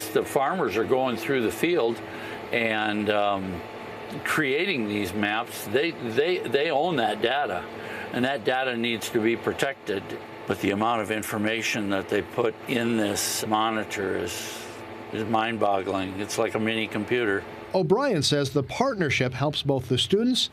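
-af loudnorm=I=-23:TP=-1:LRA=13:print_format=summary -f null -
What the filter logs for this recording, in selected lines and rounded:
Input Integrated:    -25.4 LUFS
Input True Peak:      -7.9 dBTP
Input LRA:             2.9 LU
Input Threshold:     -35.5 LUFS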